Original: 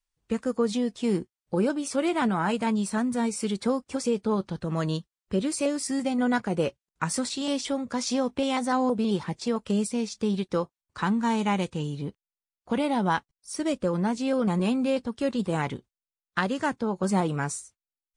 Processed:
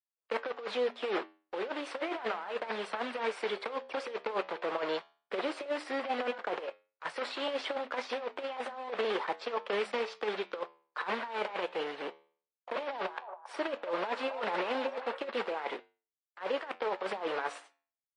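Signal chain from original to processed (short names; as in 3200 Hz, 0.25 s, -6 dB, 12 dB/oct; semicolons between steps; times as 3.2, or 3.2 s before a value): block floating point 3-bit; gate with hold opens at -43 dBFS; HPF 480 Hz 24 dB/oct; negative-ratio compressor -33 dBFS, ratio -0.5; flange 0.13 Hz, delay 9.3 ms, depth 4.8 ms, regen -82%; air absorption 420 m; 12.94–15.25 delay with a stepping band-pass 0.275 s, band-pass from 800 Hz, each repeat 0.7 oct, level -6.5 dB; gain +8 dB; MP3 40 kbps 22050 Hz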